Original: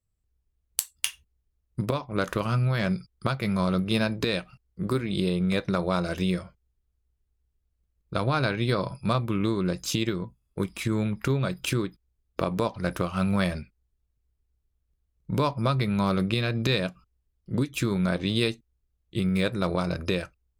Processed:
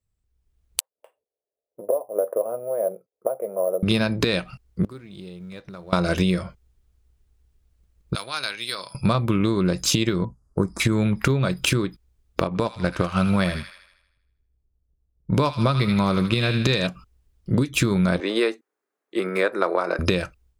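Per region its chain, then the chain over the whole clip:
0.80–3.83 s: Butterworth band-pass 560 Hz, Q 2.5 + careless resampling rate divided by 4×, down none, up hold
4.84–5.93 s: companding laws mixed up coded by mu + inverted gate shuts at -25 dBFS, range -26 dB
8.15–8.95 s: high-pass 52 Hz + differentiator
10.25–10.80 s: Chebyshev band-stop 1.3–6 kHz + distance through air 53 m
12.47–16.87 s: level-controlled noise filter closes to 670 Hz, open at -23.5 dBFS + feedback echo behind a high-pass 79 ms, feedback 53%, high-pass 1.6 kHz, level -5 dB + upward expansion, over -37 dBFS
18.20–19.99 s: high-pass 340 Hz 24 dB/octave + resonant high shelf 2.3 kHz -9 dB, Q 1.5
whole clip: compression, threshold -29 dBFS; peaking EQ 14 kHz -5.5 dB 0.41 oct; level rider gain up to 11 dB; trim +1 dB

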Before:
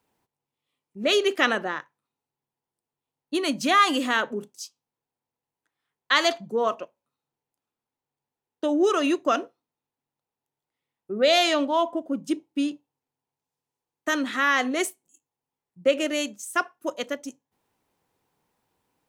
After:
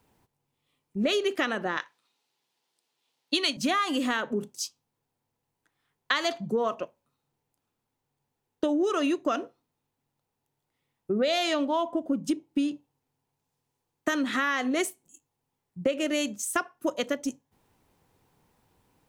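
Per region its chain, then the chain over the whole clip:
1.77–3.57 s: high-pass 320 Hz + peaking EQ 3.9 kHz +14 dB 2 oct
whole clip: bass shelf 160 Hz +11 dB; compression 6:1, threshold -29 dBFS; trim +5 dB

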